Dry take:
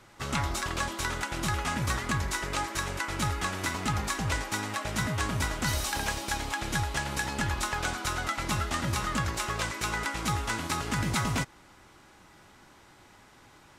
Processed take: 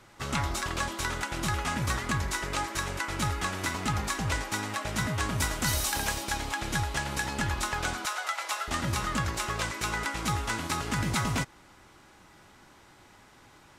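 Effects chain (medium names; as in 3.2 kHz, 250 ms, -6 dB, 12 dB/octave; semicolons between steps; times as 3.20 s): 5.38–6.23 s: treble shelf 5.8 kHz -> 9.8 kHz +8 dB; 8.05–8.68 s: high-pass 570 Hz 24 dB/octave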